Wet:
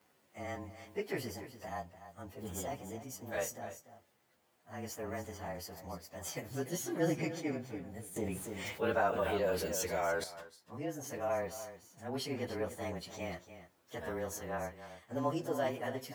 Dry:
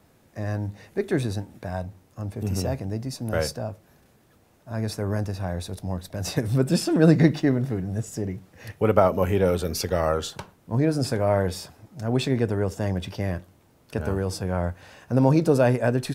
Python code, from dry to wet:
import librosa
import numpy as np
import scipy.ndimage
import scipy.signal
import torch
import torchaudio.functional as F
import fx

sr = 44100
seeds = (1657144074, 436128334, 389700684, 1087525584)

y = fx.partial_stretch(x, sr, pct=108)
y = fx.highpass(y, sr, hz=630.0, slope=6)
y = fx.rider(y, sr, range_db=4, speed_s=2.0)
y = y + 10.0 ** (-12.5 / 20.0) * np.pad(y, (int(292 * sr / 1000.0), 0))[:len(y)]
y = fx.env_flatten(y, sr, amount_pct=50, at=(8.16, 10.24))
y = F.gain(torch.from_numpy(y), -7.0).numpy()